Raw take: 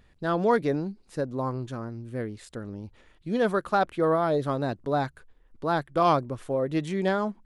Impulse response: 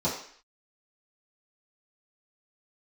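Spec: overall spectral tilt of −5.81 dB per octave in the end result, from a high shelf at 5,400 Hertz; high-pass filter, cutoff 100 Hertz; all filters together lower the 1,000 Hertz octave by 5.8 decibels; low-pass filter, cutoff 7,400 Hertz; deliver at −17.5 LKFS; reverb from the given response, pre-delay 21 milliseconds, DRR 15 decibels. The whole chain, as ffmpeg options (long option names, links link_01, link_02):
-filter_complex "[0:a]highpass=100,lowpass=7400,equalizer=frequency=1000:width_type=o:gain=-8.5,highshelf=frequency=5400:gain=6.5,asplit=2[link_01][link_02];[1:a]atrim=start_sample=2205,adelay=21[link_03];[link_02][link_03]afir=irnorm=-1:irlink=0,volume=-25dB[link_04];[link_01][link_04]amix=inputs=2:normalize=0,volume=12dB"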